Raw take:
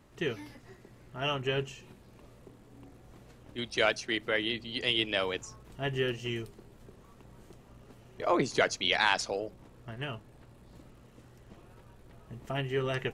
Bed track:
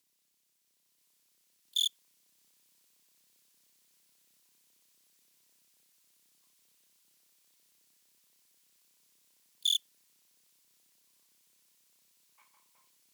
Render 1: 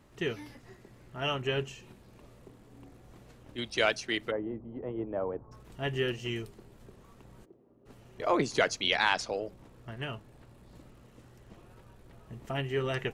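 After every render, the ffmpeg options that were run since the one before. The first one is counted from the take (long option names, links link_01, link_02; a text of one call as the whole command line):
ffmpeg -i in.wav -filter_complex "[0:a]asplit=3[link_01][link_02][link_03];[link_01]afade=type=out:start_time=4.3:duration=0.02[link_04];[link_02]lowpass=frequency=1000:width=0.5412,lowpass=frequency=1000:width=1.3066,afade=type=in:start_time=4.3:duration=0.02,afade=type=out:start_time=5.51:duration=0.02[link_05];[link_03]afade=type=in:start_time=5.51:duration=0.02[link_06];[link_04][link_05][link_06]amix=inputs=3:normalize=0,asplit=3[link_07][link_08][link_09];[link_07]afade=type=out:start_time=7.44:duration=0.02[link_10];[link_08]bandpass=frequency=360:width_type=q:width=2,afade=type=in:start_time=7.44:duration=0.02,afade=type=out:start_time=7.85:duration=0.02[link_11];[link_09]afade=type=in:start_time=7.85:duration=0.02[link_12];[link_10][link_11][link_12]amix=inputs=3:normalize=0,asettb=1/sr,asplit=3[link_13][link_14][link_15];[link_13]atrim=end=8.944[link_16];[link_14]atrim=start=8.94:end=9.46,asetpts=PTS-STARTPTS,afade=type=in:duration=0.004:curve=qsin,afade=type=out:start_time=0.516:duration=0.004:curve=qsin,highshelf=frequency=6200:gain=-6.5[link_17];[link_15]atrim=start=9.456[link_18];[link_16][link_17]acrossfade=duration=0.004:curve1=hsin:curve2=qsin[link_19];[link_19][link_18]acrossfade=duration=0.004:curve1=qsin:curve2=hsin" out.wav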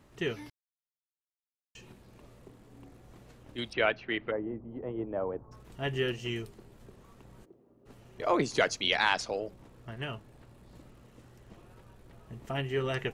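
ffmpeg -i in.wav -filter_complex "[0:a]asettb=1/sr,asplit=3[link_01][link_02][link_03];[link_01]atrim=end=3.734[link_04];[link_02]atrim=start=3.73:end=4.71,asetpts=PTS-STARTPTS,afade=type=in:duration=0.004:curve=qsin,afade=type=out:start_time=0.976:duration=0.004:curve=qsin,lowpass=frequency=2800:width=0.5412,lowpass=frequency=2800:width=1.3066[link_05];[link_03]atrim=start=4.706[link_06];[link_04][link_05]acrossfade=duration=0.004:curve1=hsin:curve2=qsin[link_07];[link_07][link_06]acrossfade=duration=0.004:curve1=qsin:curve2=hsin,asplit=3[link_08][link_09][link_10];[link_08]atrim=end=0.5,asetpts=PTS-STARTPTS,afade=type=out:start_time=0.496:duration=0.004:curve=hsin[link_11];[link_09]atrim=start=0.5:end=1.75,asetpts=PTS-STARTPTS,volume=0[link_12];[link_10]atrim=start=1.75,asetpts=PTS-STARTPTS,afade=type=in:duration=0.004:curve=hsin[link_13];[link_11][link_12][link_13]concat=n=3:v=0:a=1" out.wav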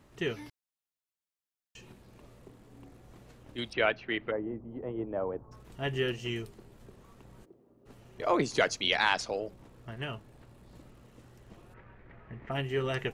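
ffmpeg -i in.wav -filter_complex "[0:a]asplit=3[link_01][link_02][link_03];[link_01]afade=type=out:start_time=11.73:duration=0.02[link_04];[link_02]lowpass=frequency=2000:width_type=q:width=3.1,afade=type=in:start_time=11.73:duration=0.02,afade=type=out:start_time=12.5:duration=0.02[link_05];[link_03]afade=type=in:start_time=12.5:duration=0.02[link_06];[link_04][link_05][link_06]amix=inputs=3:normalize=0" out.wav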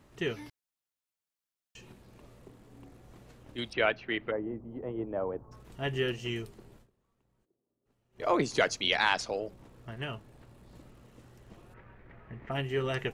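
ffmpeg -i in.wav -filter_complex "[0:a]asplit=3[link_01][link_02][link_03];[link_01]atrim=end=6.91,asetpts=PTS-STARTPTS,afade=type=out:start_time=6.77:duration=0.14:curve=qua:silence=0.0841395[link_04];[link_02]atrim=start=6.91:end=8.09,asetpts=PTS-STARTPTS,volume=-21.5dB[link_05];[link_03]atrim=start=8.09,asetpts=PTS-STARTPTS,afade=type=in:duration=0.14:curve=qua:silence=0.0841395[link_06];[link_04][link_05][link_06]concat=n=3:v=0:a=1" out.wav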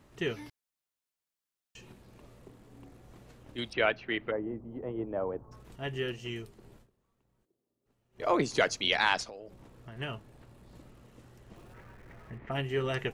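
ffmpeg -i in.wav -filter_complex "[0:a]asettb=1/sr,asplit=3[link_01][link_02][link_03];[link_01]atrim=end=9.234[link_04];[link_02]atrim=start=9.23:end=9.96,asetpts=PTS-STARTPTS,afade=type=in:duration=0.004:curve=qsin,afade=type=out:start_time=0.726:duration=0.004:curve=qsin,acompressor=threshold=-42dB:ratio=5:attack=3.2:release=140:knee=1:detection=peak[link_05];[link_03]atrim=start=9.956[link_06];[link_04][link_05]acrossfade=duration=0.004:curve1=hsin:curve2=qsin[link_07];[link_07][link_06]acrossfade=duration=0.004:curve1=qsin:curve2=hsin,asettb=1/sr,asplit=3[link_08][link_09][link_10];[link_08]atrim=end=11.564[link_11];[link_09]atrim=start=11.56:end=12.38,asetpts=PTS-STARTPTS,afade=type=in:duration=0.004:curve=qsin,afade=type=out:start_time=0.816:duration=0.004:curve=qsin,aeval=exprs='val(0)+0.5*0.00119*sgn(val(0))':channel_layout=same[link_12];[link_10]atrim=start=12.376[link_13];[link_11][link_12]acrossfade=duration=0.004:curve1=hsin:curve2=qsin[link_14];[link_14][link_13]acrossfade=duration=0.004:curve1=qsin:curve2=hsin,asplit=3[link_15][link_16][link_17];[link_15]atrim=end=5.762[link_18];[link_16]atrim=start=5.758:end=6.632,asetpts=PTS-STARTPTS,volume=-3.5dB[link_19];[link_17]atrim=start=6.628[link_20];[link_18][link_19]acrossfade=duration=0.004:curve1=hsin:curve2=hsin[link_21];[link_21][link_20]acrossfade=duration=0.004:curve1=hsin:curve2=hsin" out.wav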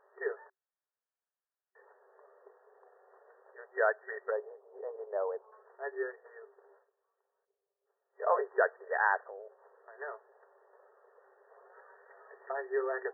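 ffmpeg -i in.wav -af "afftfilt=real='re*between(b*sr/4096,380,1900)':imag='im*between(b*sr/4096,380,1900)':win_size=4096:overlap=0.75" out.wav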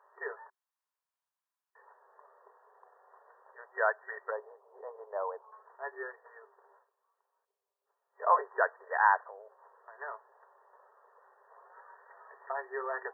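ffmpeg -i in.wav -af "highpass=600,equalizer=frequency=1000:width_type=o:width=0.42:gain=9.5" out.wav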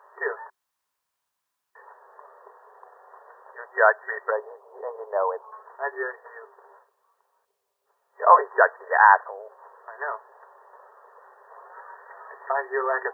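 ffmpeg -i in.wav -af "volume=11dB,alimiter=limit=-2dB:level=0:latency=1" out.wav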